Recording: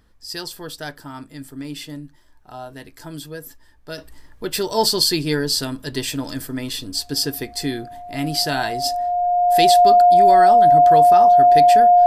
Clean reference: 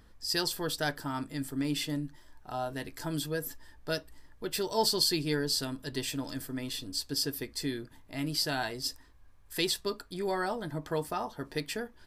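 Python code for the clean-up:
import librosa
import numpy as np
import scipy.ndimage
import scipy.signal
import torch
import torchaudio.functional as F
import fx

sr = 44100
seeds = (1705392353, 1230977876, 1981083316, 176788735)

y = fx.notch(x, sr, hz=710.0, q=30.0)
y = fx.fix_level(y, sr, at_s=3.98, step_db=-9.5)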